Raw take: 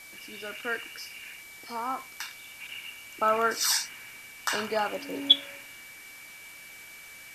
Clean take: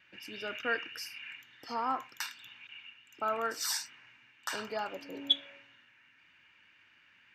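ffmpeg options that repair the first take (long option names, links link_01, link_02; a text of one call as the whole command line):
ffmpeg -i in.wav -af "bandreject=frequency=2300:width=30,afwtdn=0.0032,asetnsamples=nb_out_samples=441:pad=0,asendcmd='2.6 volume volume -8dB',volume=0dB" out.wav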